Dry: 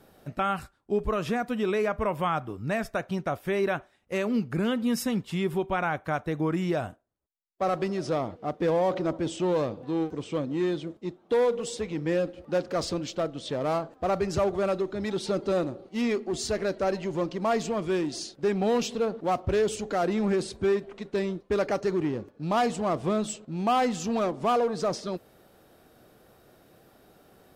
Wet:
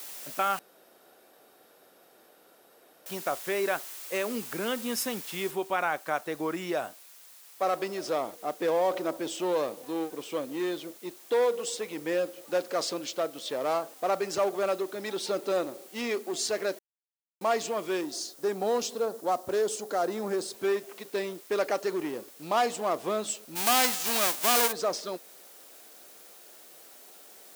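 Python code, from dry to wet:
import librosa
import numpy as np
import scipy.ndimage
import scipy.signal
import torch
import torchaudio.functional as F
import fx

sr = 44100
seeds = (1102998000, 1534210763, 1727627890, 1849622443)

y = fx.noise_floor_step(x, sr, seeds[0], at_s=5.51, before_db=-46, after_db=-56, tilt_db=0.0)
y = fx.peak_eq(y, sr, hz=2500.0, db=-9.0, octaves=1.0, at=(18.01, 20.54))
y = fx.envelope_flatten(y, sr, power=0.3, at=(23.55, 24.71), fade=0.02)
y = fx.edit(y, sr, fx.room_tone_fill(start_s=0.59, length_s=2.47),
    fx.silence(start_s=16.79, length_s=0.62), tone=tone)
y = scipy.signal.sosfilt(scipy.signal.butter(2, 390.0, 'highpass', fs=sr, output='sos'), y)
y = fx.high_shelf(y, sr, hz=5500.0, db=5.0)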